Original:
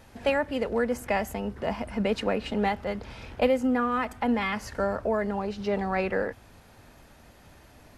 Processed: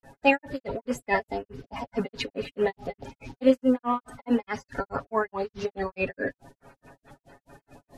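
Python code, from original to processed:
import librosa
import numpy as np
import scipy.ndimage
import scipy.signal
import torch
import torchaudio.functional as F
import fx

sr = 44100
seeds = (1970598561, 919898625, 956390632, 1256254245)

y = fx.spec_quant(x, sr, step_db=30)
y = fx.granulator(y, sr, seeds[0], grain_ms=170.0, per_s=4.7, spray_ms=36.0, spread_st=0)
y = y + 0.6 * np.pad(y, (int(7.3 * sr / 1000.0), 0))[:len(y)]
y = y * librosa.db_to_amplitude(4.0)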